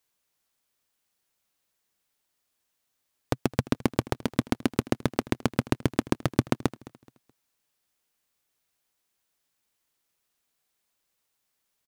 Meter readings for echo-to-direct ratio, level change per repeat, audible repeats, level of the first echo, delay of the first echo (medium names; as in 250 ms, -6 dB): -19.5 dB, -9.5 dB, 2, -20.0 dB, 213 ms